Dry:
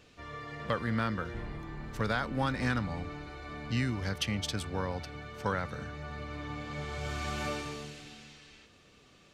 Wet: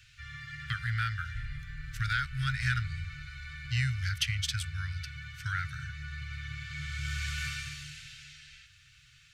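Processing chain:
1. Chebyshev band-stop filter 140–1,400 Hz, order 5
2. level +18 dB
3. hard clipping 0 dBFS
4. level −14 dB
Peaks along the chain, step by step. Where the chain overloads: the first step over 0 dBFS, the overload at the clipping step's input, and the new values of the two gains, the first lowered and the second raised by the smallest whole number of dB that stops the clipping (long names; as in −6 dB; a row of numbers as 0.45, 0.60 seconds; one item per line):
−20.0, −2.0, −2.0, −16.0 dBFS
no step passes full scale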